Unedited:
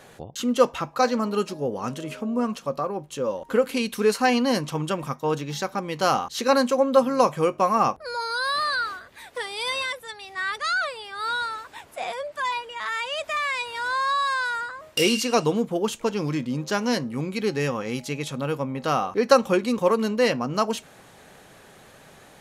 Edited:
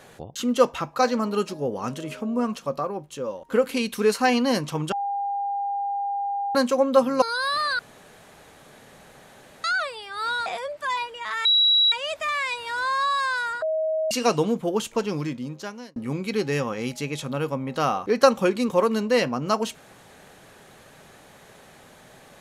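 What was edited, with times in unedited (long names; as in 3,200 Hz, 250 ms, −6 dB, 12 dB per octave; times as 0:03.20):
0:02.76–0:03.52: fade out, to −7 dB
0:04.92–0:06.55: beep over 803 Hz −24 dBFS
0:07.22–0:08.24: remove
0:08.81–0:10.66: fill with room tone
0:11.48–0:12.01: remove
0:13.00: insert tone 3,890 Hz −15 dBFS 0.47 s
0:14.70–0:15.19: beep over 633 Hz −21.5 dBFS
0:16.12–0:17.04: fade out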